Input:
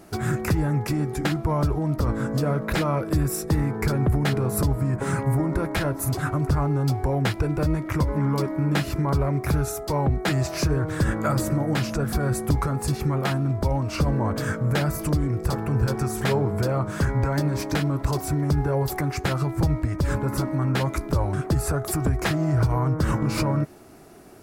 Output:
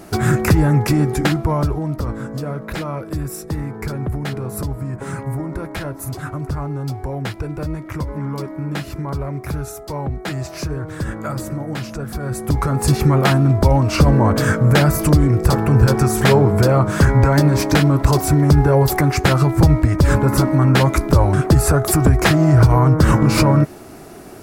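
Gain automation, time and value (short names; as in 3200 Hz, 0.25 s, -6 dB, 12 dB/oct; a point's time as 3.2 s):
1.09 s +9 dB
2.29 s -2 dB
12.19 s -2 dB
12.91 s +10 dB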